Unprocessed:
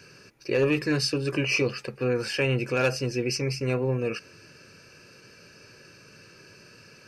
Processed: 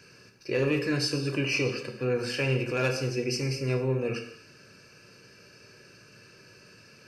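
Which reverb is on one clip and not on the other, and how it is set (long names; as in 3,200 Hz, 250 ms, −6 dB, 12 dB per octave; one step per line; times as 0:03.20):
reverb whose tail is shaped and stops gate 280 ms falling, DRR 4.5 dB
level −3.5 dB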